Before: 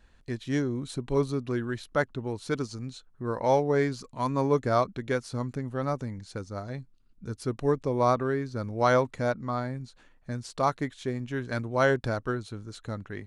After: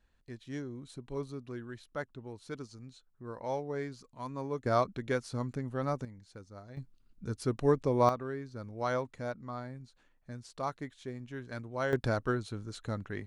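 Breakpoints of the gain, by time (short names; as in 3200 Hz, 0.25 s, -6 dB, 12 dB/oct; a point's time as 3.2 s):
-12 dB
from 4.66 s -3.5 dB
from 6.05 s -13 dB
from 6.77 s -1 dB
from 8.09 s -10 dB
from 11.93 s -1 dB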